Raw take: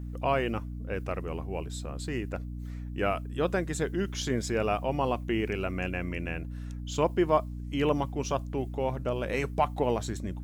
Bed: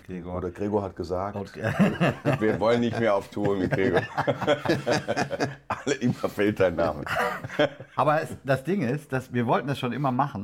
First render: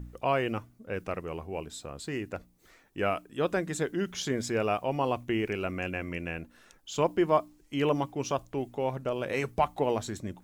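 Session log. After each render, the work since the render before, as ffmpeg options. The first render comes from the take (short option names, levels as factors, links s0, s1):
-af "bandreject=f=60:t=h:w=4,bandreject=f=120:t=h:w=4,bandreject=f=180:t=h:w=4,bandreject=f=240:t=h:w=4,bandreject=f=300:t=h:w=4"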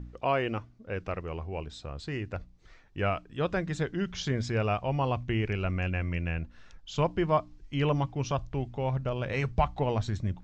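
-af "lowpass=f=5700:w=0.5412,lowpass=f=5700:w=1.3066,asubboost=boost=6.5:cutoff=120"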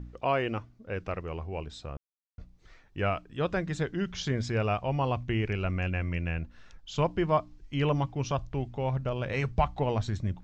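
-filter_complex "[0:a]asplit=3[s0][s1][s2];[s0]atrim=end=1.97,asetpts=PTS-STARTPTS,afade=t=out:st=1.966:d=0.004:c=hsin[s3];[s1]atrim=start=1.97:end=2.38,asetpts=PTS-STARTPTS,volume=0[s4];[s2]atrim=start=2.38,asetpts=PTS-STARTPTS,afade=t=in:d=0.004:c=hsin[s5];[s3][s4][s5]concat=n=3:v=0:a=1"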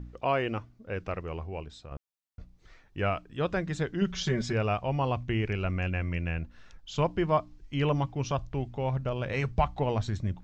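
-filter_complex "[0:a]asettb=1/sr,asplit=3[s0][s1][s2];[s0]atrim=end=4.014[s3];[s1]atrim=start=4.01:end=4.53,asetpts=PTS-STARTPTS,afade=t=in:d=0.004:c=qsin,afade=t=out:st=0.516:d=0.004:c=qsin,aecho=1:1:5.3:0.86,atrim=end_sample=22932[s4];[s2]atrim=start=4.526[s5];[s3][s4]acrossfade=d=0.004:c1=hsin:c2=qsin[s6];[s6][s5]acrossfade=d=0.004:c1=qsin:c2=hsin,asplit=2[s7][s8];[s7]atrim=end=1.91,asetpts=PTS-STARTPTS,afade=t=out:st=1.4:d=0.51:silence=0.446684[s9];[s8]atrim=start=1.91,asetpts=PTS-STARTPTS,afade=t=in:d=0.004:c=hsin:silence=0.446684[s10];[s9][s10]concat=n=2:v=0:a=1"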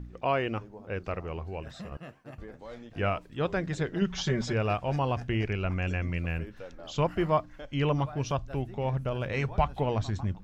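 -filter_complex "[1:a]volume=0.075[s0];[0:a][s0]amix=inputs=2:normalize=0"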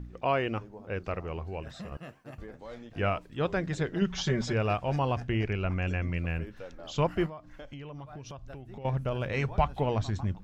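-filter_complex "[0:a]asettb=1/sr,asplit=3[s0][s1][s2];[s0]atrim=end=1.884[s3];[s1]atrim=start=1.88:end=2.47,asetpts=PTS-STARTPTS,afade=t=in:d=0.004:c=qsin,afade=t=out:st=0.586:d=0.004:c=qsin,highshelf=f=5800:g=4.5[s4];[s2]atrim=start=2.466[s5];[s3][s4]acrossfade=d=0.004:c1=hsin:c2=qsin[s6];[s6][s5]acrossfade=d=0.004:c1=qsin:c2=hsin,asettb=1/sr,asplit=3[s7][s8][s9];[s7]atrim=end=5.214[s10];[s8]atrim=start=5.21:end=6.43,asetpts=PTS-STARTPTS,afade=t=in:d=0.004:c=qsin,afade=t=out:st=1.216:d=0.004:c=qsin,highshelf=f=4600:g=-4.5[s11];[s9]atrim=start=6.426[s12];[s10][s11]acrossfade=d=0.004:c1=hsin:c2=qsin[s13];[s13][s12]acrossfade=d=0.004:c1=qsin:c2=hsin,asettb=1/sr,asplit=3[s14][s15][s16];[s14]atrim=end=7.264[s17];[s15]atrim=start=7.26:end=8.85,asetpts=PTS-STARTPTS,afade=t=in:d=0.004:c=qsin,afade=t=out:st=1.586:d=0.004:c=qsin,acompressor=threshold=0.0112:ratio=10:attack=3.2:release=140:knee=1:detection=peak[s18];[s16]atrim=start=8.846[s19];[s17][s18]acrossfade=d=0.004:c1=hsin:c2=qsin[s20];[s20][s19]acrossfade=d=0.004:c1=qsin:c2=hsin"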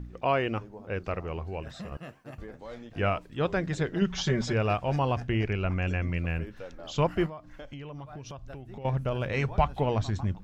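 -af "volume=1.19"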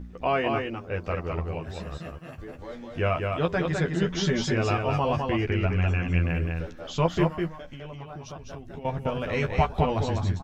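-filter_complex "[0:a]asplit=2[s0][s1];[s1]adelay=12,volume=0.668[s2];[s0][s2]amix=inputs=2:normalize=0,asplit=2[s3][s4];[s4]aecho=0:1:205:0.631[s5];[s3][s5]amix=inputs=2:normalize=0"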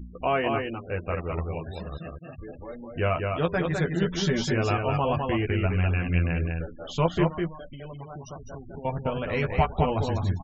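-af "afftfilt=real='re*gte(hypot(re,im),0.01)':imag='im*gte(hypot(re,im),0.01)':win_size=1024:overlap=0.75"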